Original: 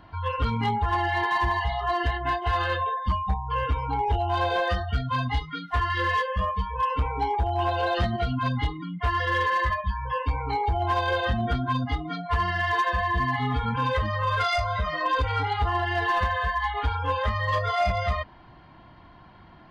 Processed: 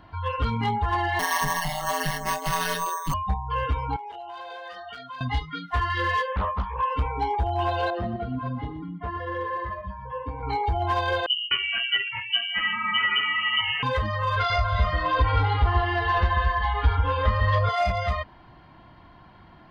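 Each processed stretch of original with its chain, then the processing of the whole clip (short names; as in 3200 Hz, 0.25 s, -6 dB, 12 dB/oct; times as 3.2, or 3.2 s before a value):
1.19–3.14 high shelf 2100 Hz +9.5 dB + ring modulator 85 Hz + careless resampling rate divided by 6×, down none, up hold
3.96–5.21 HPF 530 Hz + compressor 8:1, threshold -35 dBFS
6.32–6.92 LPF 2800 Hz + Doppler distortion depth 0.72 ms
7.9–10.43 band-pass 310 Hz, Q 0.61 + feedback echo 0.121 s, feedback 25%, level -11.5 dB
11.26–13.83 bands offset in time lows, highs 0.25 s, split 180 Hz + inverted band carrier 3000 Hz
14.36–17.69 LPF 5100 Hz 24 dB/oct + low shelf 80 Hz +10.5 dB + echo with dull and thin repeats by turns 0.139 s, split 1300 Hz, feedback 52%, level -5 dB
whole clip: dry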